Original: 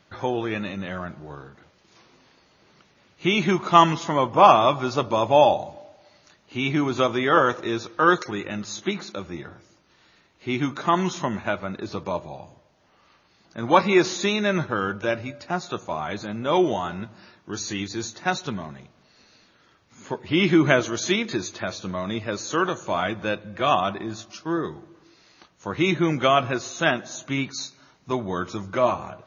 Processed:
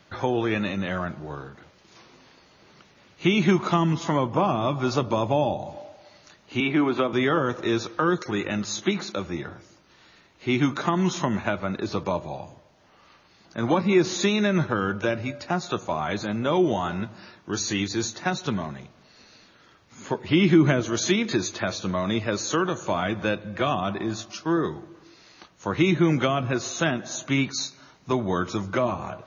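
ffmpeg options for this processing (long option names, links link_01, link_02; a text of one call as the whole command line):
ffmpeg -i in.wav -filter_complex "[0:a]asettb=1/sr,asplit=3[link_01][link_02][link_03];[link_01]atrim=end=6.604[link_04];[link_02]atrim=start=6.6:end=7.13,asetpts=PTS-STARTPTS,afade=type=in:duration=0.004:curve=qsin,afade=type=out:start_time=0.526:duration=0.004:curve=qsin,acrossover=split=190 3800:gain=0.178 1 0.0631[link_05][link_06][link_07];[link_05][link_06][link_07]amix=inputs=3:normalize=0[link_08];[link_03]atrim=start=7.126[link_09];[link_04][link_08]acrossfade=duration=0.004:curve1=hsin:curve2=qsin[link_10];[link_10][link_09]acrossfade=duration=0.004:curve1=qsin:curve2=hsin,acrossover=split=320[link_11][link_12];[link_12]acompressor=threshold=-26dB:ratio=10[link_13];[link_11][link_13]amix=inputs=2:normalize=0,volume=3.5dB" out.wav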